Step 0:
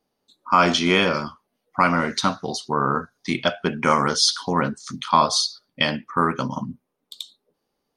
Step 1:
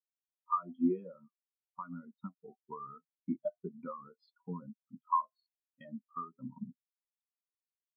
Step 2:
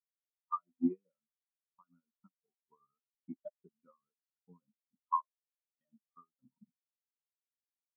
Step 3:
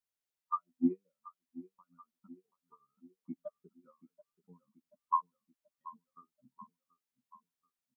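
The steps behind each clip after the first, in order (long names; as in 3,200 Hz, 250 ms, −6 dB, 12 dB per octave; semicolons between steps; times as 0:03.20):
low-pass filter 2,400 Hz 12 dB per octave; downward compressor 5 to 1, threshold −25 dBFS, peak gain reduction 13 dB; every bin expanded away from the loudest bin 4 to 1; level −8 dB
expander for the loud parts 2.5 to 1, over −50 dBFS
repeating echo 732 ms, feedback 52%, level −18 dB; level +2 dB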